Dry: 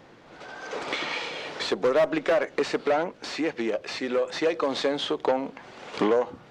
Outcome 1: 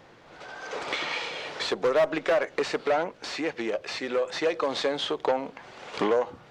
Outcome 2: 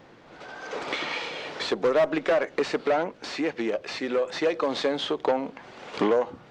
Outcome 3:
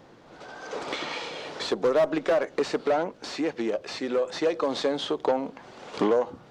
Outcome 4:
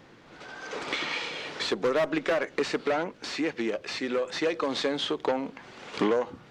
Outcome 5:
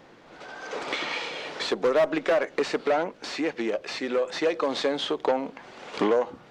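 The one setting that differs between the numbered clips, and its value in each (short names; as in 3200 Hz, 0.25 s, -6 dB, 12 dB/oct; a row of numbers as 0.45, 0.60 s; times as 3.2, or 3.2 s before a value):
bell, frequency: 250, 13000, 2200, 660, 98 Hz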